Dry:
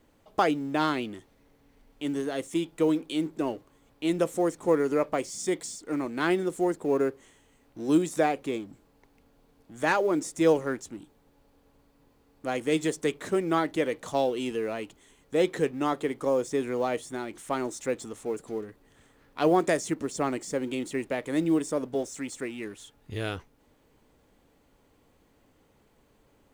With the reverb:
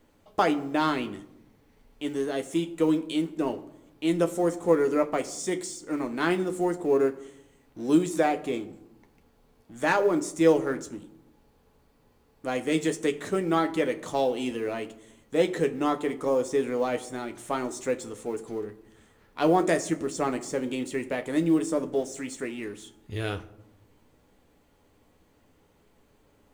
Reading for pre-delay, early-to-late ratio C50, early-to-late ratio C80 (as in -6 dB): 10 ms, 16.5 dB, 19.0 dB